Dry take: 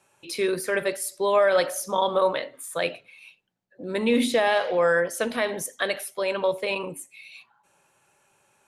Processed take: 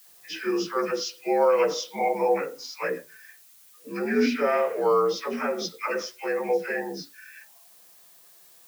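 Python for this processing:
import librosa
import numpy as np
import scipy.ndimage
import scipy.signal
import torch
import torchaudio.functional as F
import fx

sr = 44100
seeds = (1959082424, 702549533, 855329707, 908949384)

y = fx.partial_stretch(x, sr, pct=83)
y = fx.dispersion(y, sr, late='lows', ms=82.0, hz=1000.0)
y = fx.dmg_noise_colour(y, sr, seeds[0], colour='blue', level_db=-54.0)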